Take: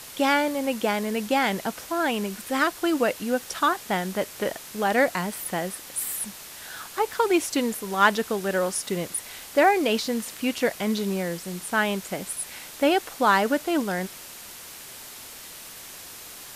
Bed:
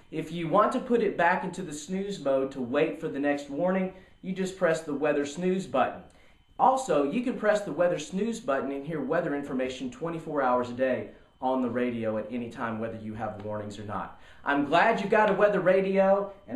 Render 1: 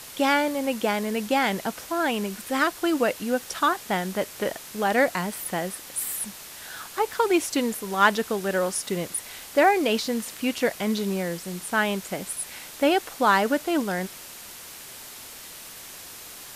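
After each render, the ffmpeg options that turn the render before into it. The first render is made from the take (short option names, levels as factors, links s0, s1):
-af anull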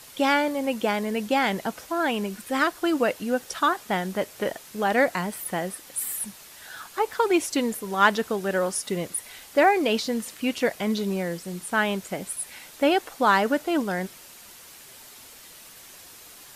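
-af "afftdn=nr=6:nf=-42"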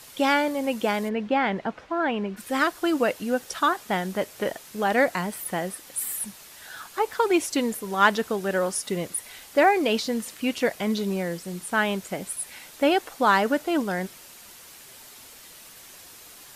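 -filter_complex "[0:a]asplit=3[s0][s1][s2];[s0]afade=t=out:st=1.08:d=0.02[s3];[s1]lowpass=2500,afade=t=in:st=1.08:d=0.02,afade=t=out:st=2.36:d=0.02[s4];[s2]afade=t=in:st=2.36:d=0.02[s5];[s3][s4][s5]amix=inputs=3:normalize=0"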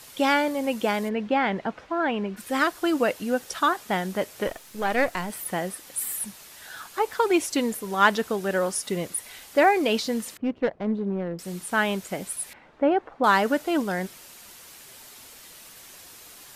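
-filter_complex "[0:a]asettb=1/sr,asplit=3[s0][s1][s2];[s0]atrim=end=4.474[s3];[s1]atrim=start=4.47:end=5.3,asetpts=PTS-STARTPTS,afade=t=in:d=0.004:c=qsin,afade=t=out:st=0.826:d=0.004:c=qsin,aeval=exprs='if(lt(val(0),0),0.447*val(0),val(0))':c=same[s4];[s2]atrim=start=5.296[s5];[s3][s4]acrossfade=d=0.004:c1=hsin:c2=qsin[s6];[s6][s5]acrossfade=d=0.004:c1=qsin:c2=hsin,asettb=1/sr,asplit=3[s7][s8][s9];[s7]atrim=end=10.374[s10];[s8]atrim=start=10.37:end=11.39,asetpts=PTS-STARTPTS,afade=t=in:d=0.004:c=qsin,afade=t=out:st=1.016:d=0.004:c=qsin,adynamicsmooth=sensitivity=0.5:basefreq=580[s11];[s9]atrim=start=11.386[s12];[s10][s11]acrossfade=d=0.004:c1=hsin:c2=qsin[s13];[s13][s12]acrossfade=d=0.004:c1=qsin:c2=hsin,asettb=1/sr,asplit=3[s14][s15][s16];[s14]atrim=end=12.534[s17];[s15]atrim=start=12.53:end=13.24,asetpts=PTS-STARTPTS,afade=t=in:d=0.004:c=qsin,afade=t=out:st=0.706:d=0.004:c=qsin,lowpass=1300[s18];[s16]atrim=start=13.236[s19];[s17][s18]acrossfade=d=0.004:c1=hsin:c2=qsin[s20];[s20][s19]acrossfade=d=0.004:c1=qsin:c2=hsin"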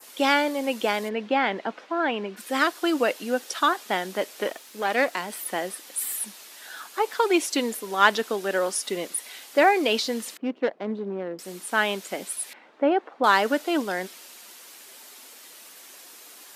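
-af "highpass=f=240:w=0.5412,highpass=f=240:w=1.3066,adynamicequalizer=threshold=0.00794:dfrequency=3800:dqfactor=0.92:tfrequency=3800:tqfactor=0.92:attack=5:release=100:ratio=0.375:range=2:mode=boostabove:tftype=bell"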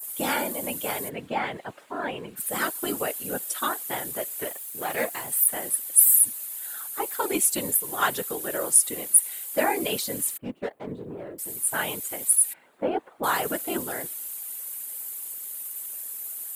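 -af "afftfilt=real='hypot(re,im)*cos(2*PI*random(0))':imag='hypot(re,im)*sin(2*PI*random(1))':win_size=512:overlap=0.75,aexciter=amount=11.8:drive=2.7:freq=7800"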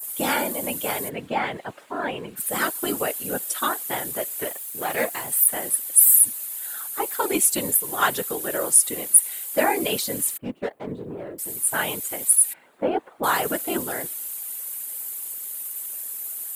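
-af "volume=1.41,alimiter=limit=0.891:level=0:latency=1"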